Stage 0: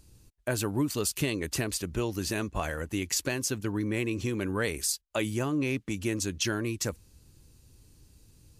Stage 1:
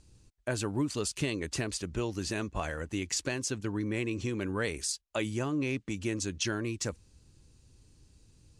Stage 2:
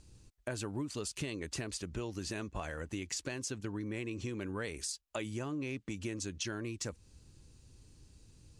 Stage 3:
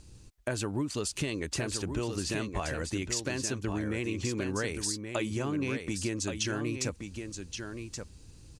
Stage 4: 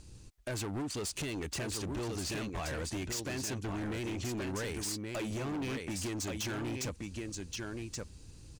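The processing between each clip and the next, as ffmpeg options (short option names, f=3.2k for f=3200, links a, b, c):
-af "lowpass=f=8.9k:w=0.5412,lowpass=f=8.9k:w=1.3066,volume=-2.5dB"
-af "acompressor=threshold=-40dB:ratio=2.5,volume=1dB"
-af "aecho=1:1:1125:0.447,volume=6dB"
-af "asoftclip=type=hard:threshold=-34dB"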